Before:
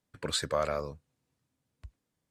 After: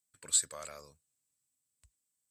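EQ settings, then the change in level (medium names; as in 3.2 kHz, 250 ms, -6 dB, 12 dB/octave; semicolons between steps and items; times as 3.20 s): pre-emphasis filter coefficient 0.9; peaking EQ 7.9 kHz +14.5 dB 0.24 oct; 0.0 dB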